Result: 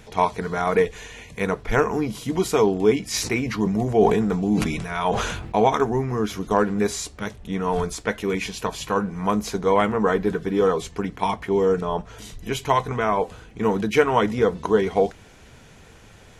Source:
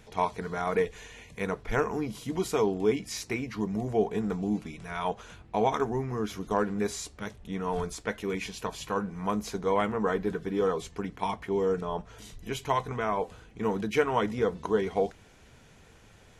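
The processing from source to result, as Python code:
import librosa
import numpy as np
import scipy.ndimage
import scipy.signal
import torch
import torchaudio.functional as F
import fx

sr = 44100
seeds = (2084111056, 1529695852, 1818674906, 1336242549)

y = fx.sustainer(x, sr, db_per_s=42.0, at=(3.13, 5.66), fade=0.02)
y = F.gain(torch.from_numpy(y), 7.5).numpy()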